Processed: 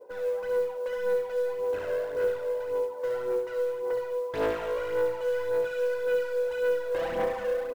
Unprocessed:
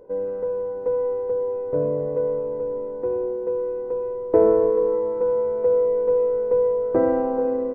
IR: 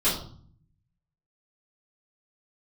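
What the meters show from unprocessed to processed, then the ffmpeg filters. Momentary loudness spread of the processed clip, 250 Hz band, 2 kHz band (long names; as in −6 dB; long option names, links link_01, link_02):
3 LU, −15.5 dB, can't be measured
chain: -filter_complex "[0:a]highpass=1000,adynamicequalizer=threshold=0.00355:dfrequency=1300:dqfactor=0.9:tfrequency=1300:tqfactor=0.9:attack=5:release=100:ratio=0.375:range=3.5:mode=cutabove:tftype=bell,asplit=2[link_01][link_02];[link_02]alimiter=level_in=5dB:limit=-24dB:level=0:latency=1,volume=-5dB,volume=0.5dB[link_03];[link_01][link_03]amix=inputs=2:normalize=0,volume=31.5dB,asoftclip=hard,volume=-31.5dB,aphaser=in_gain=1:out_gain=1:delay=1.9:decay=0.6:speed=1.8:type=sinusoidal,asplit=2[link_04][link_05];[link_05]aecho=0:1:25|67:0.251|0.501[link_06];[link_04][link_06]amix=inputs=2:normalize=0,acrusher=bits=8:mode=log:mix=0:aa=0.000001"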